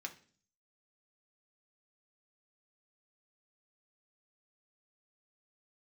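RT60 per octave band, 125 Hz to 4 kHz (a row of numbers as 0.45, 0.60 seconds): 0.70, 0.65, 0.50, 0.40, 0.45, 0.50 seconds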